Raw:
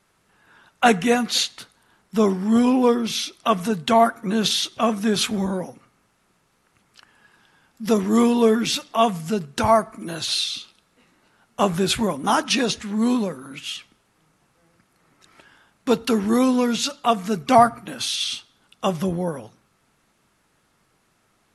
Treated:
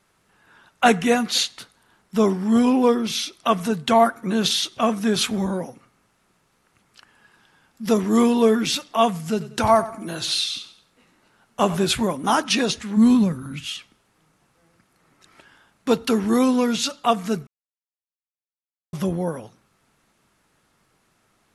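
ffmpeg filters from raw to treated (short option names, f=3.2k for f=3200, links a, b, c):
-filter_complex "[0:a]asettb=1/sr,asplit=3[a][b][c];[a]atrim=end=9.244[d];[b]atrim=start=9.24:end=11.86,asetpts=PTS-STARTPTS,afade=t=in:d=0.004:c=qsin,afade=t=out:st=2.616:d=0.004:c=qsin,aecho=1:1:93|186|279:0.178|0.064|0.023,atrim=end_sample=115542[e];[c]atrim=start=11.856[f];[d][e]acrossfade=d=0.004:c1=hsin:c2=qsin[g];[g][f]acrossfade=d=0.004:c1=qsin:c2=hsin,asplit=3[h][i][j];[h]afade=t=out:st=12.96:d=0.02[k];[i]asubboost=boost=7.5:cutoff=160,afade=t=in:st=12.96:d=0.02,afade=t=out:st=13.65:d=0.02[l];[j]afade=t=in:st=13.65:d=0.02[m];[k][l][m]amix=inputs=3:normalize=0,asplit=3[n][o][p];[n]atrim=end=17.47,asetpts=PTS-STARTPTS,afade=t=out:st=17.466:d=0.004:c=hsin[q];[o]atrim=start=17.47:end=18.93,asetpts=PTS-STARTPTS,volume=0[r];[p]atrim=start=18.93,asetpts=PTS-STARTPTS,afade=t=in:d=0.004:c=hsin[s];[q][r][s]concat=n=3:v=0:a=1"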